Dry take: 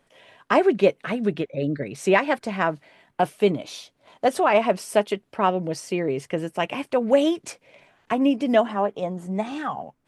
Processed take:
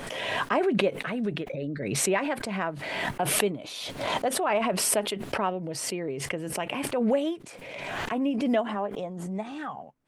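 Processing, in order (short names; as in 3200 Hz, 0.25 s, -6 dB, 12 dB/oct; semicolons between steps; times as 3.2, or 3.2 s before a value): dynamic EQ 5800 Hz, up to -6 dB, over -50 dBFS, Q 1.8; backwards sustainer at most 29 dB/s; gain -8 dB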